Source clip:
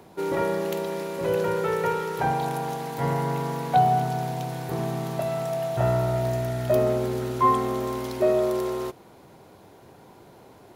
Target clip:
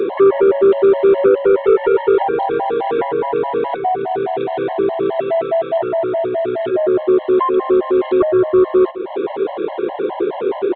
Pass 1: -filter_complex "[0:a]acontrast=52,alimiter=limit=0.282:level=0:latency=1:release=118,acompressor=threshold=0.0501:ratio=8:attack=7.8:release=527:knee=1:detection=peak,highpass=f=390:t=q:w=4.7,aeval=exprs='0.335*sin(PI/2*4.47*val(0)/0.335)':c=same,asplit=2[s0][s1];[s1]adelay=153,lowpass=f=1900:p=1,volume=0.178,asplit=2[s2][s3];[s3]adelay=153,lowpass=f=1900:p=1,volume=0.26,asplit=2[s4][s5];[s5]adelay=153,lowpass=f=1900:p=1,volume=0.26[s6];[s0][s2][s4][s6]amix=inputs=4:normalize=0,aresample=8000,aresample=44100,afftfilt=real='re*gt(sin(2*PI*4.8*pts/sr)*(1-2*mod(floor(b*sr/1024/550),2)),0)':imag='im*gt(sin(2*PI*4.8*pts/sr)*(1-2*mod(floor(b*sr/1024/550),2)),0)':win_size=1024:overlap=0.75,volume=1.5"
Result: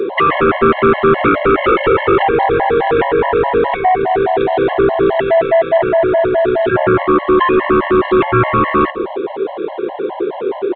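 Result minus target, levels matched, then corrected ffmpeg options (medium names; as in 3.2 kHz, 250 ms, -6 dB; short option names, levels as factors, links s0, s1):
compression: peak gain reduction -8 dB
-filter_complex "[0:a]acontrast=52,alimiter=limit=0.282:level=0:latency=1:release=118,acompressor=threshold=0.0178:ratio=8:attack=7.8:release=527:knee=1:detection=peak,highpass=f=390:t=q:w=4.7,aeval=exprs='0.335*sin(PI/2*4.47*val(0)/0.335)':c=same,asplit=2[s0][s1];[s1]adelay=153,lowpass=f=1900:p=1,volume=0.178,asplit=2[s2][s3];[s3]adelay=153,lowpass=f=1900:p=1,volume=0.26,asplit=2[s4][s5];[s5]adelay=153,lowpass=f=1900:p=1,volume=0.26[s6];[s0][s2][s4][s6]amix=inputs=4:normalize=0,aresample=8000,aresample=44100,afftfilt=real='re*gt(sin(2*PI*4.8*pts/sr)*(1-2*mod(floor(b*sr/1024/550),2)),0)':imag='im*gt(sin(2*PI*4.8*pts/sr)*(1-2*mod(floor(b*sr/1024/550),2)),0)':win_size=1024:overlap=0.75,volume=1.5"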